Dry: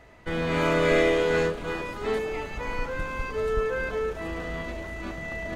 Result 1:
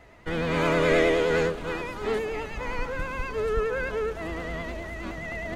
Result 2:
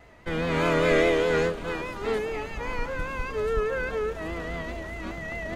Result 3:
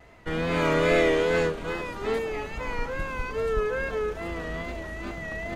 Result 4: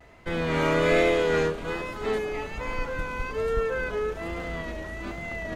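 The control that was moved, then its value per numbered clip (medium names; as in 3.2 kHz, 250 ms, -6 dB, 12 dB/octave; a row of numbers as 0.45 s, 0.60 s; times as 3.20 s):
vibrato, rate: 9.6 Hz, 4.9 Hz, 2.4 Hz, 1.2 Hz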